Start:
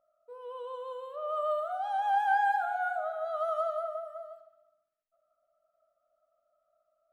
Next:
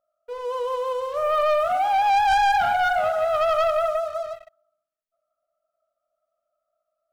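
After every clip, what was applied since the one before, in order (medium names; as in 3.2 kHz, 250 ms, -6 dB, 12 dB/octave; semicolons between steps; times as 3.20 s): waveshaping leveller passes 3; trim +2.5 dB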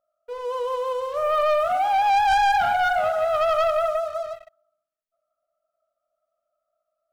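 no audible change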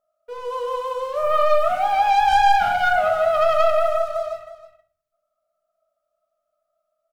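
delay 320 ms -14.5 dB; simulated room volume 440 m³, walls furnished, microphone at 1.4 m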